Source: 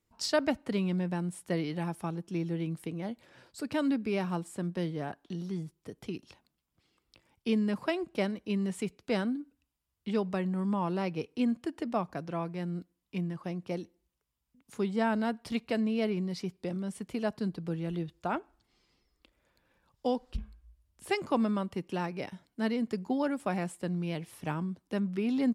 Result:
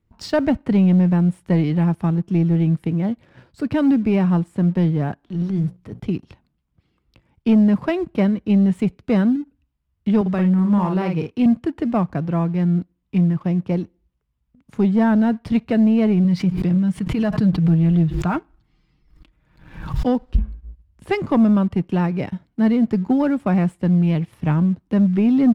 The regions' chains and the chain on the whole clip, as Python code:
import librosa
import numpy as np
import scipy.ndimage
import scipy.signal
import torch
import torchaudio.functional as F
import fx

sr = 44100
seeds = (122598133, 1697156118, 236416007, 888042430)

y = fx.chain(x, sr, fx.hum_notches(base_hz=60, count=4),
    fx.transient(attack_db=-9, sustain_db=4), at=(5.23, 6.0))
y = fx.chain(y, sr, fx.highpass(hz=44.0, slope=24),
    fx.low_shelf(hz=430.0, db=-5.0),
    fx.doubler(ms=49.0, db=-5.0), at=(10.21, 11.46))
y = fx.chain(y, sr, fx.peak_eq(hz=510.0, db=-7.5, octaves=0.81),
    fx.comb(ms=6.4, depth=0.46),
    fx.pre_swell(db_per_s=61.0), at=(16.24, 20.07))
y = fx.bass_treble(y, sr, bass_db=12, treble_db=-13)
y = fx.leveller(y, sr, passes=1)
y = y * librosa.db_to_amplitude(5.0)